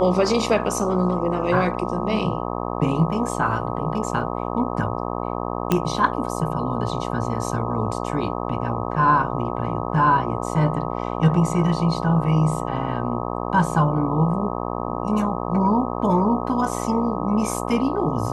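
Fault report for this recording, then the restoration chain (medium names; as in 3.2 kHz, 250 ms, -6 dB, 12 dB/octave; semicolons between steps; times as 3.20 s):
buzz 60 Hz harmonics 21 -27 dBFS
5.72 s: pop -6 dBFS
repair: de-click; de-hum 60 Hz, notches 21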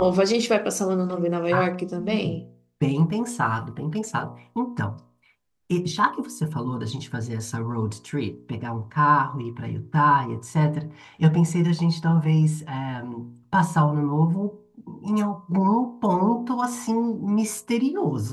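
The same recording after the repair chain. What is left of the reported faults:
nothing left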